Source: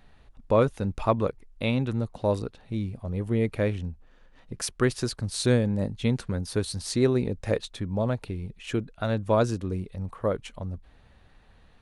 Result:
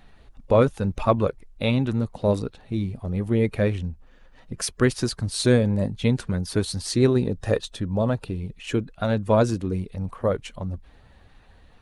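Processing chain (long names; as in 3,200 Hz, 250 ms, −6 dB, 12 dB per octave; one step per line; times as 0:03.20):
spectral magnitudes quantised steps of 15 dB
0:07.11–0:08.41: notch filter 2,200 Hz, Q 6.2
level +4 dB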